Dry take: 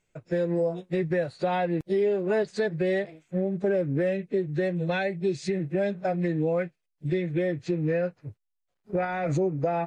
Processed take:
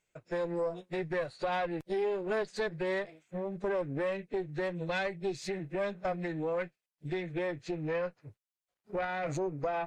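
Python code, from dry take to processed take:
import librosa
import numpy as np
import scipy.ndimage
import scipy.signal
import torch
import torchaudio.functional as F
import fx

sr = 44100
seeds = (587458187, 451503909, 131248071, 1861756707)

y = fx.low_shelf(x, sr, hz=370.0, db=-8.5)
y = fx.tube_stage(y, sr, drive_db=23.0, bias=0.6)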